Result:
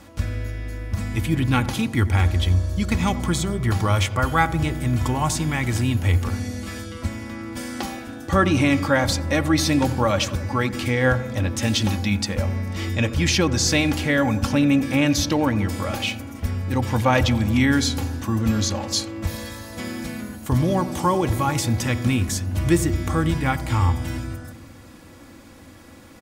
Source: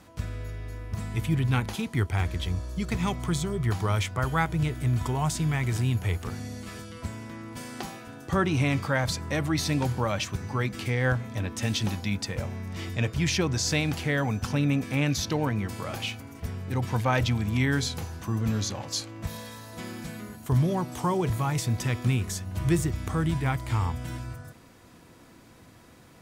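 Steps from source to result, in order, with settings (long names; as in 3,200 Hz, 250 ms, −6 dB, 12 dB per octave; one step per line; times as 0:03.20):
parametric band 88 Hz +6 dB 0.37 octaves
comb filter 3.6 ms, depth 51%
feedback echo with a low-pass in the loop 88 ms, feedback 78%, low-pass 920 Hz, level −13 dB
level +6 dB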